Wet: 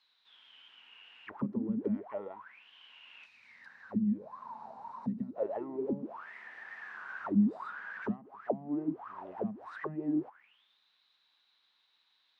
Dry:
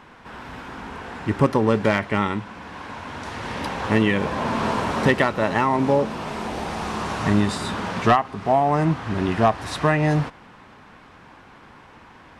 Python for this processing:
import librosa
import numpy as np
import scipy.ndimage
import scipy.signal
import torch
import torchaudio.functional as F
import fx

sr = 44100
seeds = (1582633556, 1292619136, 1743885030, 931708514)

y = fx.auto_wah(x, sr, base_hz=200.0, top_hz=4300.0, q=16.0, full_db=-14.0, direction='down')
y = fx.spec_box(y, sr, start_s=3.26, length_s=2.1, low_hz=270.0, high_hz=3600.0, gain_db=-11)